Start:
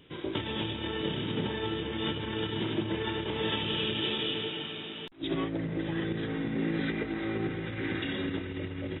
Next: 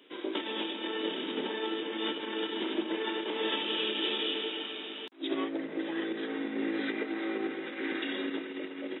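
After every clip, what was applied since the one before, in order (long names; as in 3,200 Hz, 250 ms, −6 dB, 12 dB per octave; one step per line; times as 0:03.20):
Butterworth high-pass 250 Hz 36 dB per octave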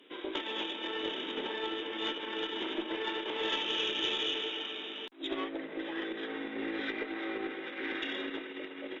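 dynamic equaliser 210 Hz, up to −7 dB, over −48 dBFS, Q 0.77
harmonic generator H 2 −16 dB, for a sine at −19 dBFS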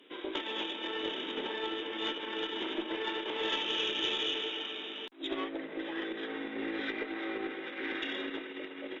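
no processing that can be heard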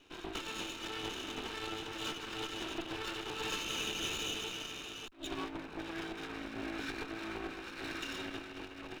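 lower of the sound and its delayed copy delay 0.75 ms
level −2 dB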